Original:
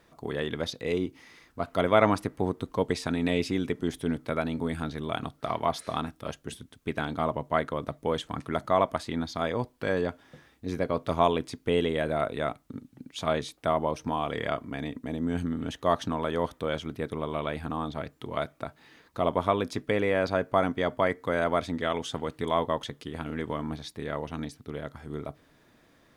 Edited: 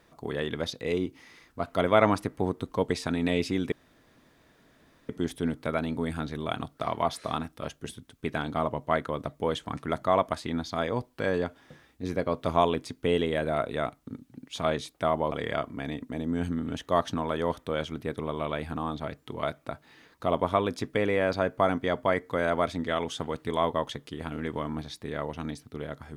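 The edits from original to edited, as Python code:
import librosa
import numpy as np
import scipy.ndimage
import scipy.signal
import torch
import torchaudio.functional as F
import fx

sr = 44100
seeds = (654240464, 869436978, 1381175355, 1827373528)

y = fx.edit(x, sr, fx.insert_room_tone(at_s=3.72, length_s=1.37),
    fx.cut(start_s=13.95, length_s=0.31), tone=tone)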